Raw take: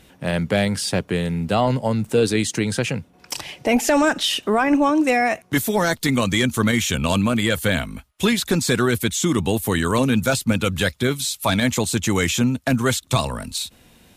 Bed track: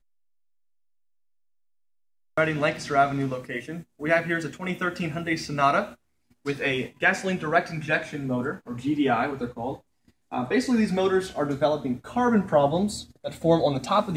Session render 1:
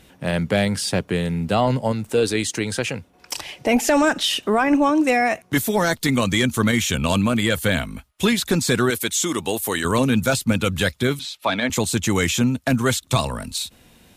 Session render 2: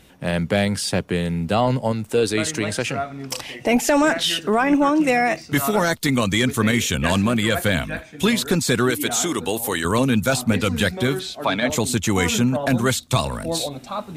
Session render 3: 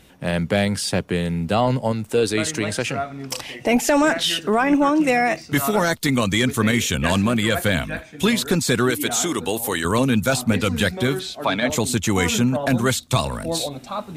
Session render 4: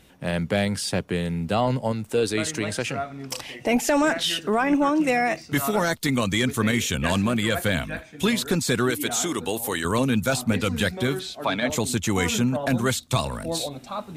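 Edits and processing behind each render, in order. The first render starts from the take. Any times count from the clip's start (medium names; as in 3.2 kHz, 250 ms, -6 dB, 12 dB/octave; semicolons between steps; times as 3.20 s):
1.92–3.59 s: peaking EQ 160 Hz -7 dB 1.3 oct; 8.90–9.85 s: tone controls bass -13 dB, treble +3 dB; 11.19–11.70 s: three-band isolator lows -16 dB, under 240 Hz, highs -20 dB, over 4.4 kHz
add bed track -6.5 dB
no audible change
trim -3.5 dB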